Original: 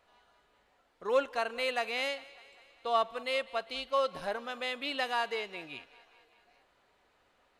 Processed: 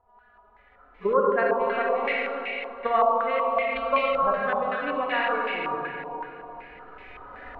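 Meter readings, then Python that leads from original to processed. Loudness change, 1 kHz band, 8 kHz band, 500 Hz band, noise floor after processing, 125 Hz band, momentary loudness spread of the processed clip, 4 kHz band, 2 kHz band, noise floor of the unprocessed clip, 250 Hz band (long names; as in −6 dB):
+8.0 dB, +10.5 dB, below −20 dB, +9.0 dB, −57 dBFS, can't be measured, 20 LU, −2.5 dB, +8.0 dB, −70 dBFS, +10.5 dB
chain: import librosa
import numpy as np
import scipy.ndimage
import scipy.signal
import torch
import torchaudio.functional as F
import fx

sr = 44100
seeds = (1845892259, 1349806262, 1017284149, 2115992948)

y = fx.hpss_only(x, sr, part='harmonic')
y = fx.recorder_agc(y, sr, target_db=-22.5, rise_db_per_s=11.0, max_gain_db=30)
y = fx.low_shelf(y, sr, hz=220.0, db=11.0)
y = fx.transient(y, sr, attack_db=6, sustain_db=-9)
y = fx.rev_freeverb(y, sr, rt60_s=3.6, hf_ratio=0.85, predelay_ms=10, drr_db=-4.0)
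y = fx.filter_held_lowpass(y, sr, hz=5.3, low_hz=940.0, high_hz=2300.0)
y = y * librosa.db_to_amplitude(-3.0)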